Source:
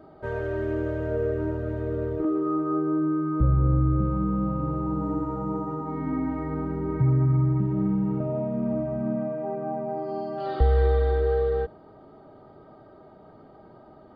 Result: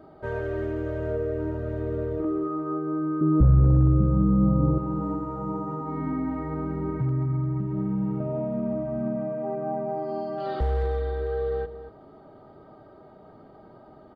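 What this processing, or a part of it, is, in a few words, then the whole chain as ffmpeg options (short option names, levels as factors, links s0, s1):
clipper into limiter: -filter_complex "[0:a]asoftclip=type=hard:threshold=0.188,alimiter=limit=0.106:level=0:latency=1:release=460,asettb=1/sr,asplit=3[s0][s1][s2];[s0]atrim=end=3.214[s3];[s1]atrim=start=3.21:end=4.78,asetpts=PTS-STARTPTS,afade=t=in:d=0.004:c=qsin,afade=t=out:st=1.566:d=0.004:c=qsin,tiltshelf=f=1100:g=9.5[s4];[s2]atrim=start=4.776[s5];[s3][s4]acrossfade=d=0.004:c1=hsin:c2=qsin[s6];[s6][s5]acrossfade=d=0.004:c1=qsin:c2=hsin,asplit=2[s7][s8];[s8]adelay=233.2,volume=0.224,highshelf=f=4000:g=-5.25[s9];[s7][s9]amix=inputs=2:normalize=0"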